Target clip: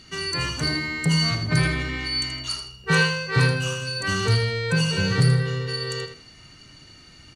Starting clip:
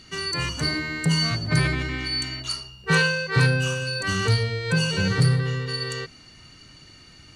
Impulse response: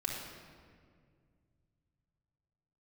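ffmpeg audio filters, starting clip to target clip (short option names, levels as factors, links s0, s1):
-af "aecho=1:1:80|160|240:0.355|0.0852|0.0204"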